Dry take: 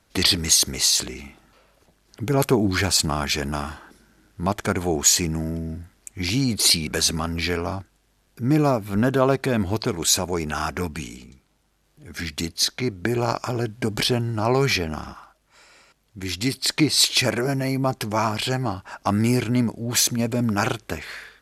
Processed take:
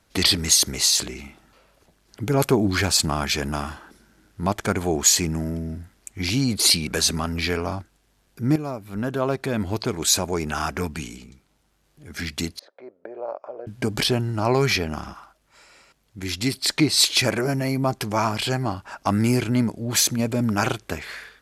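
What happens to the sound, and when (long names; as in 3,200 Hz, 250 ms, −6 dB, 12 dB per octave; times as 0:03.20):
0:08.56–0:10.14: fade in, from −12.5 dB
0:12.59–0:13.67: four-pole ladder band-pass 590 Hz, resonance 70%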